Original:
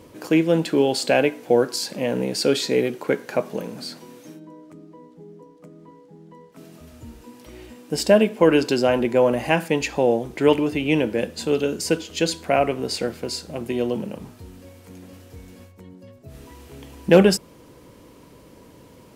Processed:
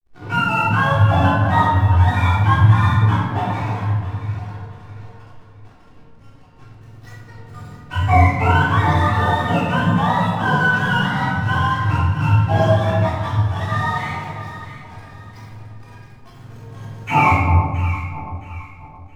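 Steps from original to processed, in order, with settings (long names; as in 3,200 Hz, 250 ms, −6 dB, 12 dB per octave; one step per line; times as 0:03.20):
frequency axis turned over on the octave scale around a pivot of 670 Hz
dynamic equaliser 4,000 Hz, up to +5 dB, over −47 dBFS, Q 1.6
in parallel at +1 dB: downward compressor, threshold −31 dBFS, peak gain reduction 18.5 dB
on the sum: chorus effect 0.31 Hz, delay 16.5 ms, depth 5.3 ms
slack as between gear wheels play −33.5 dBFS
floating-point word with a short mantissa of 6 bits
delay that swaps between a low-pass and a high-pass 334 ms, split 1,000 Hz, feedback 57%, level −7 dB
rectangular room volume 870 cubic metres, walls mixed, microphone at 3.5 metres
level −3 dB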